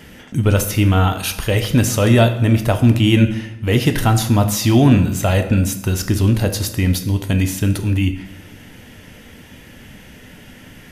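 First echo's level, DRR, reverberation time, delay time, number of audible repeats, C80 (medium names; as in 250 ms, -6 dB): no echo, 7.0 dB, 0.90 s, no echo, no echo, 13.0 dB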